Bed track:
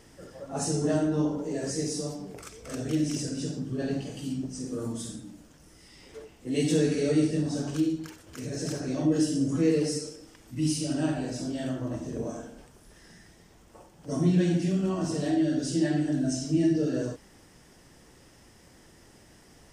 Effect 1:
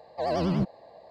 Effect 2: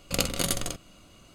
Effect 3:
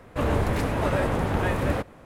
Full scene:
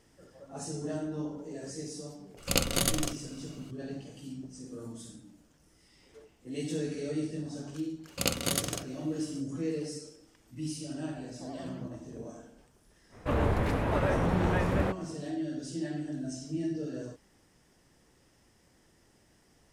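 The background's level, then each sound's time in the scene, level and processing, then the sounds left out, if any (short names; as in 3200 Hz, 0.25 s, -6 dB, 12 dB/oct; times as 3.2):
bed track -9.5 dB
2.37 add 2 -0.5 dB
8.07 add 2 -2.5 dB + HPF 74 Hz
11.23 add 1 -18 dB
13.1 add 3 -3.5 dB, fades 0.05 s + high shelf 5100 Hz -8 dB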